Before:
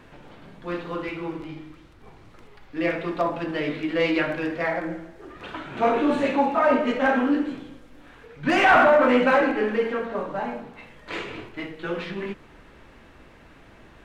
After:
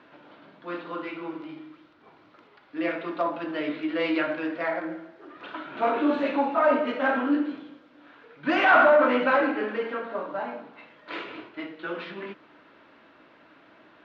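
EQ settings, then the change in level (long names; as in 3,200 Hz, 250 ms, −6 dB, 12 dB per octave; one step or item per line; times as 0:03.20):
loudspeaker in its box 190–4,200 Hz, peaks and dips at 300 Hz +8 dB, 620 Hz +7 dB, 1,000 Hz +5 dB, 1,400 Hz +7 dB
high-shelf EQ 3,100 Hz +9.5 dB
−8.0 dB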